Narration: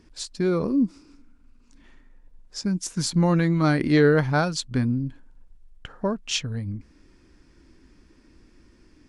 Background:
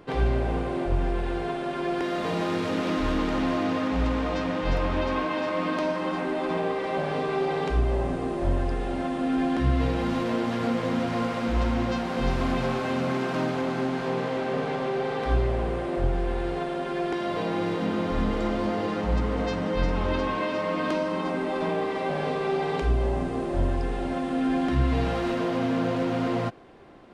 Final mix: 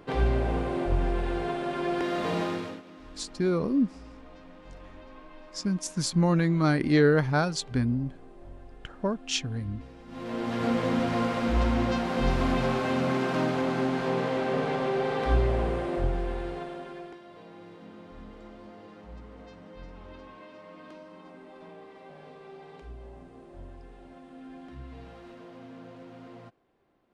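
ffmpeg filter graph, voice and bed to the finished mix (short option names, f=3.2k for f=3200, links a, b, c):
-filter_complex "[0:a]adelay=3000,volume=-3dB[a];[1:a]volume=21.5dB,afade=t=out:st=2.38:d=0.44:silence=0.0841395,afade=t=in:st=10.07:d=0.65:silence=0.0749894,afade=t=out:st=15.61:d=1.6:silence=0.0944061[b];[a][b]amix=inputs=2:normalize=0"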